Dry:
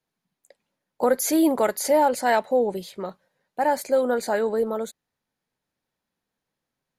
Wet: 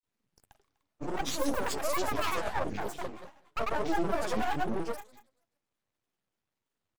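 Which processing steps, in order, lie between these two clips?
limiter -18.5 dBFS, peak gain reduction 9 dB; flutter echo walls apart 11.9 m, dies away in 0.73 s; half-wave rectifier; grains, grains 21/s, pitch spread up and down by 12 st

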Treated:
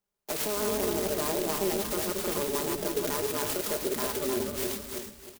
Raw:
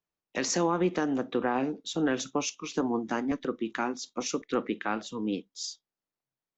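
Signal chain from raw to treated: regenerating reverse delay 0.19 s, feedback 55%, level -3 dB; bell 200 Hz -8 dB 0.32 oct; comb 6 ms, depth 81%; in parallel at +1 dB: compressor, threshold -31 dBFS, peak gain reduction 14 dB; on the sum: limiter -17.5 dBFS, peak gain reduction 9.5 dB; on a send: frequency-shifting echo 0.132 s, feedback 37%, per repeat -130 Hz, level -10 dB; on the sum: varispeed +22%; clock jitter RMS 0.14 ms; gain -3.5 dB

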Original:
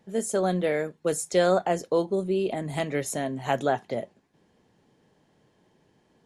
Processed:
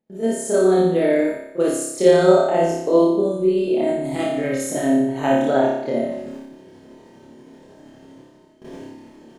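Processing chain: bell 330 Hz +8 dB 1.9 oct; doubler 22 ms -4 dB; gate with hold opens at -45 dBFS; reverse; upward compressor, threshold -21 dBFS; reverse; granular stretch 1.5×, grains 0.159 s; flutter echo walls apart 5.1 m, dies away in 0.83 s; gain -1 dB

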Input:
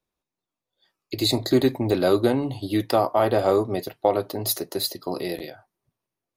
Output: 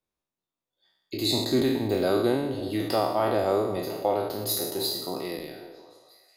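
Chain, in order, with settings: spectral trails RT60 0.96 s; delay with a stepping band-pass 0.18 s, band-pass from 220 Hz, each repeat 0.7 oct, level -9.5 dB; gain -6.5 dB

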